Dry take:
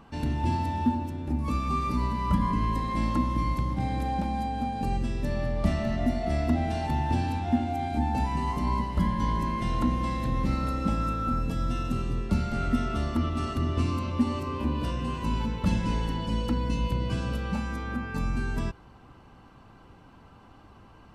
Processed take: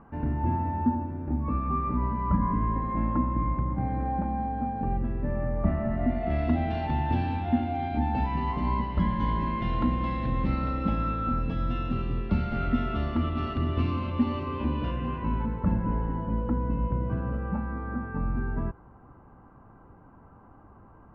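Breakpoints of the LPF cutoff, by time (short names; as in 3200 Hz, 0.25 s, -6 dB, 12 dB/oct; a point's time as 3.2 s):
LPF 24 dB/oct
5.89 s 1700 Hz
6.47 s 3400 Hz
14.68 s 3400 Hz
15.76 s 1500 Hz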